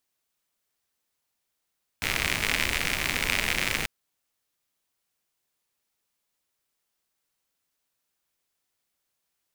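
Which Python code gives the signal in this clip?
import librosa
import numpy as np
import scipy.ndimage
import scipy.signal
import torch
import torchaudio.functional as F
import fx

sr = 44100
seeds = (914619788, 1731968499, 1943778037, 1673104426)

y = fx.rain(sr, seeds[0], length_s=1.84, drops_per_s=96.0, hz=2200.0, bed_db=-4)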